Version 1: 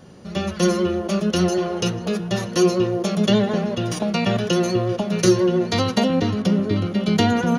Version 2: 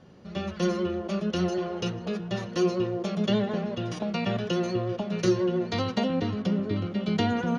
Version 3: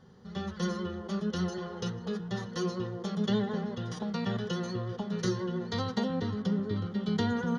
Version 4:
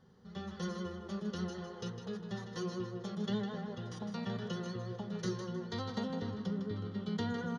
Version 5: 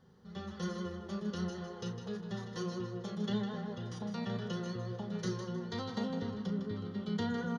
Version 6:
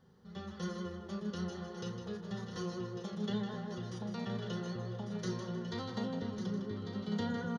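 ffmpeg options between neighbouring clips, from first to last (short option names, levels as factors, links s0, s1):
-af "lowpass=4600,volume=0.422"
-af "superequalizer=6b=0.398:8b=0.398:12b=0.282,volume=0.708"
-af "aecho=1:1:156|312|468:0.376|0.0977|0.0254,volume=0.447"
-filter_complex "[0:a]asplit=2[s0][s1];[s1]adelay=34,volume=0.316[s2];[s0][s2]amix=inputs=2:normalize=0"
-af "aecho=1:1:1148:0.376,volume=0.841"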